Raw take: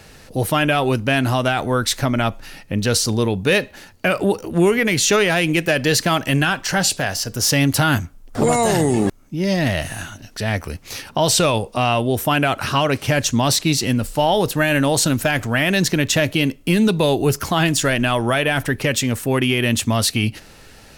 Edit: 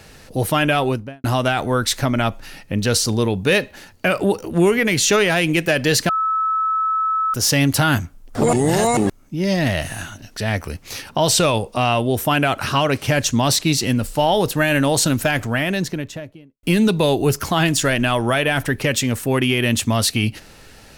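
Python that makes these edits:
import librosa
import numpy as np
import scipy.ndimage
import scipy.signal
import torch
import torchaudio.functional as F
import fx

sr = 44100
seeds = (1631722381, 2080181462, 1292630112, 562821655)

y = fx.studio_fade_out(x, sr, start_s=0.78, length_s=0.46)
y = fx.studio_fade_out(y, sr, start_s=15.26, length_s=1.37)
y = fx.edit(y, sr, fx.bleep(start_s=6.09, length_s=1.25, hz=1300.0, db=-16.5),
    fx.reverse_span(start_s=8.53, length_s=0.44), tone=tone)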